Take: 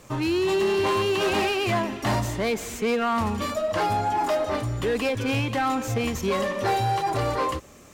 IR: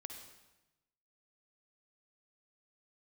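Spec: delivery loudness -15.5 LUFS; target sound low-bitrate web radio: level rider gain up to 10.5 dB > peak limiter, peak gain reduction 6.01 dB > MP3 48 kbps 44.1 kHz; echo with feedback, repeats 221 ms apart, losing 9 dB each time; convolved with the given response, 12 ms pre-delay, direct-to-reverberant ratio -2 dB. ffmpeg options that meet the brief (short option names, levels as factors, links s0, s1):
-filter_complex "[0:a]aecho=1:1:221|442|663|884:0.355|0.124|0.0435|0.0152,asplit=2[s0][s1];[1:a]atrim=start_sample=2205,adelay=12[s2];[s1][s2]afir=irnorm=-1:irlink=0,volume=2[s3];[s0][s3]amix=inputs=2:normalize=0,dynaudnorm=m=3.35,alimiter=limit=0.211:level=0:latency=1,volume=2.37" -ar 44100 -c:a libmp3lame -b:a 48k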